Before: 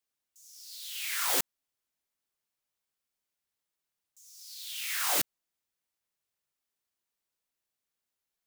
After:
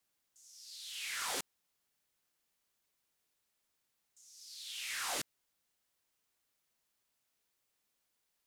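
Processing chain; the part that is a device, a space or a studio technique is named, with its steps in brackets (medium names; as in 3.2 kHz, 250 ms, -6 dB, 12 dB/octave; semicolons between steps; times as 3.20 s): compact cassette (saturation -27 dBFS, distortion -11 dB; low-pass 9.4 kHz 12 dB/octave; wow and flutter 11 cents; white noise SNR 34 dB); trim -3 dB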